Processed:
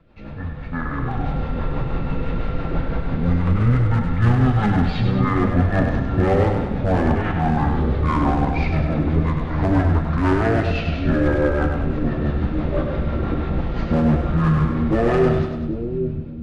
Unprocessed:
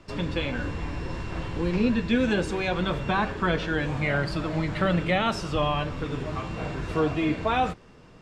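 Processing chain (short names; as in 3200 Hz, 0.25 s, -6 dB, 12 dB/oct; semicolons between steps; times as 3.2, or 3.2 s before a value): AGC gain up to 12 dB; hard clip -10.5 dBFS, distortion -14 dB; speed mistake 15 ips tape played at 7.5 ips; rotary speaker horn 6 Hz; split-band echo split 420 Hz, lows 0.781 s, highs 99 ms, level -5.5 dB; gain -1 dB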